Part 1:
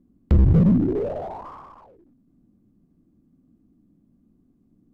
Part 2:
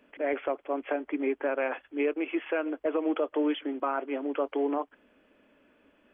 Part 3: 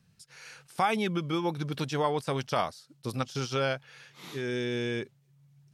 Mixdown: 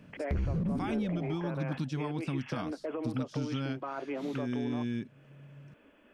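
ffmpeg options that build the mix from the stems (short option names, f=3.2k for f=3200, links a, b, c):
-filter_complex "[0:a]volume=-4dB[a];[1:a]alimiter=level_in=0.5dB:limit=-24dB:level=0:latency=1:release=17,volume=-0.5dB,volume=2dB[b];[2:a]lowpass=9.3k,lowshelf=f=340:t=q:w=3:g=9,volume=-2dB[c];[a][b][c]amix=inputs=3:normalize=0,acompressor=threshold=-35dB:ratio=2.5"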